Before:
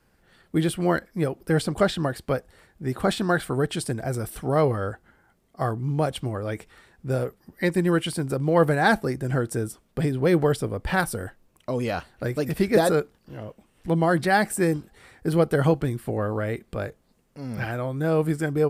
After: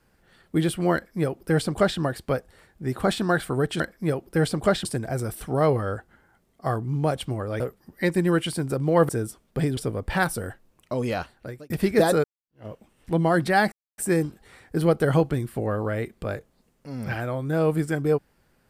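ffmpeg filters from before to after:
-filter_complex "[0:a]asplit=9[a][b][c][d][e][f][g][h][i];[a]atrim=end=3.802[j];[b]atrim=start=0.938:end=1.992[k];[c]atrim=start=3.798:end=6.552[l];[d]atrim=start=7.198:end=8.692[m];[e]atrim=start=9.498:end=10.182[n];[f]atrim=start=10.538:end=12.47,asetpts=PTS-STARTPTS,afade=t=out:st=1.382:d=0.55[o];[g]atrim=start=12.47:end=13.01,asetpts=PTS-STARTPTS,afade=t=in:d=0.004:c=hsin,afade=t=out:st=0.536:d=0.004:c=hsin[p];[h]atrim=start=13.01:end=14.49,asetpts=PTS-STARTPTS,afade=t=in:d=0.42:c=exp,afade=t=out:st=1.476:d=0.004:c=hsin,apad=pad_dur=0.26[q];[i]atrim=start=14.49,asetpts=PTS-STARTPTS,afade=t=in:d=0.004:c=hsin[r];[j][k]acrossfade=d=0.004:c1=hsin:c2=hsin[s];[s][l]acrossfade=d=0.004:c1=hsin:c2=hsin[t];[t][m]acrossfade=d=0.004:c1=hsin:c2=hsin[u];[u][n]acrossfade=d=0.004:c1=hsin:c2=hsin[v];[o][p][q][r]concat=n=4:v=0:a=1[w];[v][w]acrossfade=d=0.004:c1=hsin:c2=hsin"

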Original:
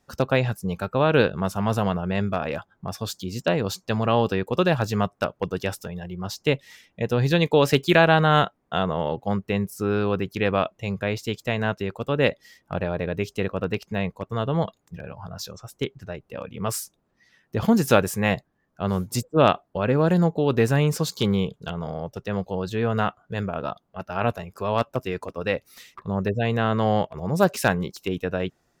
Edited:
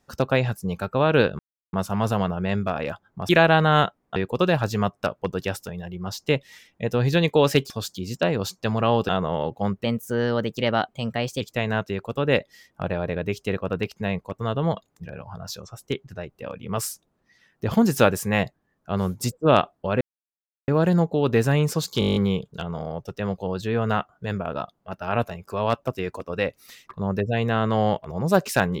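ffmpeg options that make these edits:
-filter_complex "[0:a]asplit=17[a][b][c][d][e][f][g][h][i][j][k][l][m][n][o][p][q];[a]atrim=end=1.39,asetpts=PTS-STARTPTS,afade=t=out:st=1.386:d=0.004:c=hsin,apad=pad_dur=0.34[r];[b]atrim=start=1.39:end=2.952,asetpts=PTS-STARTPTS,afade=t=in:d=0.004:c=hsin[s];[c]atrim=start=7.878:end=8.752[t];[d]atrim=start=4.338:end=7.882[u];[e]atrim=start=2.948:end=4.342[v];[f]atrim=start=8.748:end=9.504[w];[g]atrim=start=9.5:end=11.32,asetpts=PTS-STARTPTS,asetrate=51156,aresample=44100,atrim=end_sample=69191,asetpts=PTS-STARTPTS[x];[h]atrim=start=11.316:end=19.92,asetpts=PTS-STARTPTS,afade=t=out:st=8.6:d=0.004:c=hsin,apad=pad_dur=0.67[y];[i]atrim=start=19.92:end=21.262,asetpts=PTS-STARTPTS,afade=t=in:d=0.004:c=hsin[z];[j]atrim=start=21.238:end=21.262[aa];[k]atrim=start=21.238:end=21.262[ab];[l]atrim=start=21.238:end=21.262[ac];[m]atrim=start=21.238:end=21.262[ad];[n]atrim=start=21.238:end=21.262[ae];[o]atrim=start=21.238:end=21.262[af];[p]atrim=start=21.238:end=21.262[ag];[q]atrim=start=21.238[ah];[r][s]concat=n=2:v=0:a=1[ai];[ai][t]acrossfade=d=0.004:c1=hsin:c2=hsin[aj];[aj][u]acrossfade=d=0.004:c1=hsin:c2=hsin[ak];[ak][v]acrossfade=d=0.004:c1=hsin:c2=hsin[al];[al][w]acrossfade=d=0.004:c1=hsin:c2=hsin[am];[am][x]acrossfade=d=0.004:c1=hsin:c2=hsin[an];[y][z]concat=n=2:v=0:a=1[ao];[an][ao]acrossfade=d=0.004:c1=hsin:c2=hsin[ap];[ap][aa]acrossfade=d=0.004:c1=hsin:c2=hsin[aq];[aq][ab]acrossfade=d=0.004:c1=hsin:c2=hsin[ar];[ar][ac]acrossfade=d=0.004:c1=hsin:c2=hsin[as];[as][ad]acrossfade=d=0.004:c1=hsin:c2=hsin[at];[at][ae]acrossfade=d=0.004:c1=hsin:c2=hsin[au];[au][af]acrossfade=d=0.004:c1=hsin:c2=hsin[av];[av][ag]acrossfade=d=0.004:c1=hsin:c2=hsin[aw];[aw][ah]acrossfade=d=0.004:c1=hsin:c2=hsin"

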